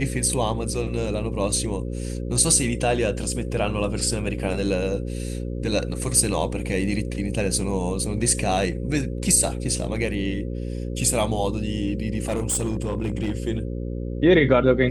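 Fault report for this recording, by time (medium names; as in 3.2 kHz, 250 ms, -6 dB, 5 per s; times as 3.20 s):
buzz 60 Hz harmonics 9 -29 dBFS
12.28–13.32 s: clipped -19.5 dBFS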